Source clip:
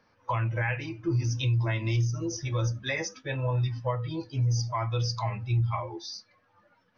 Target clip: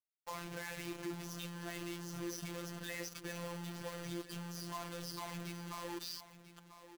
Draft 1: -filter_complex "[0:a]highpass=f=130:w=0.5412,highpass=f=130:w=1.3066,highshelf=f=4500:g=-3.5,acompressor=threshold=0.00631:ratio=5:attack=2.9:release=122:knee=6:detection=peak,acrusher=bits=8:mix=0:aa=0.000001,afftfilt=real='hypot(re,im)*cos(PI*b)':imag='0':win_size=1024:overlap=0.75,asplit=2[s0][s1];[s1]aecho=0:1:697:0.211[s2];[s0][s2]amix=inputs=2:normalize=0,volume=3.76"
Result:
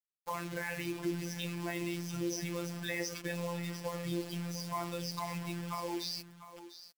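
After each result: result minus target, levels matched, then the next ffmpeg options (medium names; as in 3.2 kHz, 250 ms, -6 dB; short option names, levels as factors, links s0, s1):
compression: peak gain reduction -7 dB; echo 295 ms early
-filter_complex "[0:a]highpass=f=130:w=0.5412,highpass=f=130:w=1.3066,highshelf=f=4500:g=-3.5,acompressor=threshold=0.00224:ratio=5:attack=2.9:release=122:knee=6:detection=peak,acrusher=bits=8:mix=0:aa=0.000001,afftfilt=real='hypot(re,im)*cos(PI*b)':imag='0':win_size=1024:overlap=0.75,asplit=2[s0][s1];[s1]aecho=0:1:697:0.211[s2];[s0][s2]amix=inputs=2:normalize=0,volume=3.76"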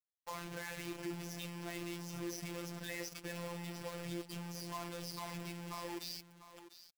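echo 295 ms early
-filter_complex "[0:a]highpass=f=130:w=0.5412,highpass=f=130:w=1.3066,highshelf=f=4500:g=-3.5,acompressor=threshold=0.00224:ratio=5:attack=2.9:release=122:knee=6:detection=peak,acrusher=bits=8:mix=0:aa=0.000001,afftfilt=real='hypot(re,im)*cos(PI*b)':imag='0':win_size=1024:overlap=0.75,asplit=2[s0][s1];[s1]aecho=0:1:992:0.211[s2];[s0][s2]amix=inputs=2:normalize=0,volume=3.76"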